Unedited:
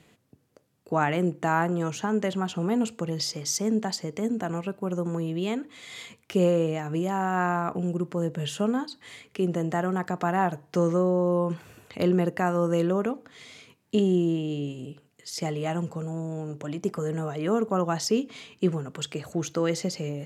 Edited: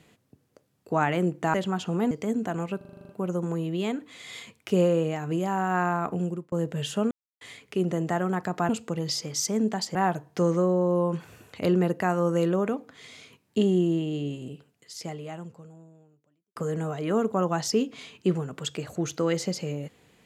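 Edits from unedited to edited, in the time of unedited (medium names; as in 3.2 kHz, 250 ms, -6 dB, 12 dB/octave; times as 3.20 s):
1.54–2.23 s: delete
2.80–4.06 s: move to 10.32 s
4.72 s: stutter 0.04 s, 9 plays
7.87–8.15 s: fade out
8.74–9.04 s: mute
14.83–16.93 s: fade out quadratic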